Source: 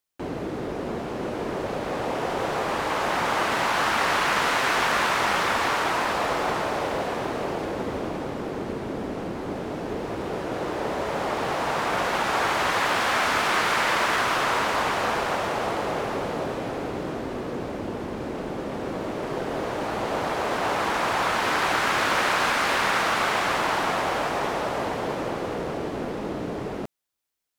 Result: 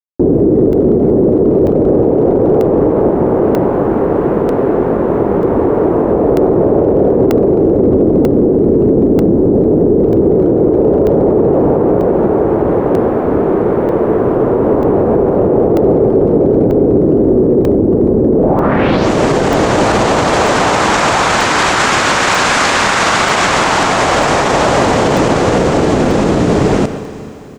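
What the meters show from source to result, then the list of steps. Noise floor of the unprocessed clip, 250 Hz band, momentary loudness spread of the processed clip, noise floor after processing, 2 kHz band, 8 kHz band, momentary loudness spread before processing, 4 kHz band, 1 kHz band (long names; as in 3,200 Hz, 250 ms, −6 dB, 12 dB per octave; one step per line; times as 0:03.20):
−33 dBFS, +21.0 dB, 3 LU, −14 dBFS, +7.5 dB, +12.5 dB, 10 LU, +8.5 dB, +9.0 dB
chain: noise that follows the level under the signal 32 dB
in parallel at +2 dB: compressor whose output falls as the input rises −27 dBFS, ratio −0.5
on the sum: low-shelf EQ 94 Hz −5 dB
low-pass filter sweep 410 Hz → 7,400 Hz, 0:18.36–0:19.11
low-shelf EQ 210 Hz +10 dB
far-end echo of a speakerphone 120 ms, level −13 dB
four-comb reverb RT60 3.2 s, combs from 28 ms, DRR 12.5 dB
bit reduction 11 bits
regular buffer underruns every 0.94 s, samples 64, zero, from 0:00.73
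boost into a limiter +12 dB
level −1.5 dB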